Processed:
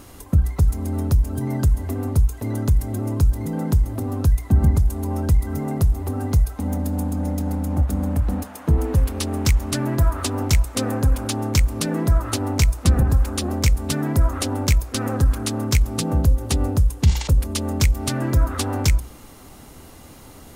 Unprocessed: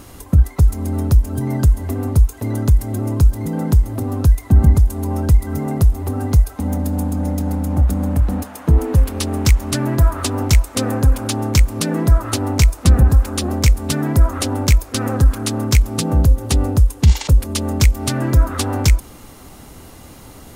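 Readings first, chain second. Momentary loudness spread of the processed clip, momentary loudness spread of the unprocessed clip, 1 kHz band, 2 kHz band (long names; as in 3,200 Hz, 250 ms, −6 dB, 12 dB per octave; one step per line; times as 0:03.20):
6 LU, 7 LU, −3.5 dB, −3.5 dB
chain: mains-hum notches 60/120/180 Hz
level −3.5 dB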